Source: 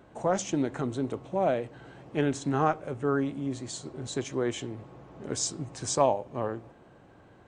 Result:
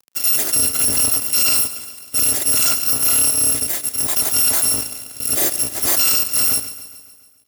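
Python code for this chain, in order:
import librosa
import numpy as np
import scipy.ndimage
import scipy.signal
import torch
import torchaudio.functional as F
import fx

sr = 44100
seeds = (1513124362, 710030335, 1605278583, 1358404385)

y = fx.bit_reversed(x, sr, seeds[0], block=256)
y = fx.peak_eq(y, sr, hz=3100.0, db=-12.0, octaves=2.2)
y = fx.quant_companded(y, sr, bits=6)
y = fx.rotary(y, sr, hz=0.6)
y = fx.fuzz(y, sr, gain_db=45.0, gate_db=-53.0)
y = scipy.signal.sosfilt(scipy.signal.butter(2, 170.0, 'highpass', fs=sr, output='sos'), y)
y = fx.echo_feedback(y, sr, ms=140, feedback_pct=59, wet_db=-15)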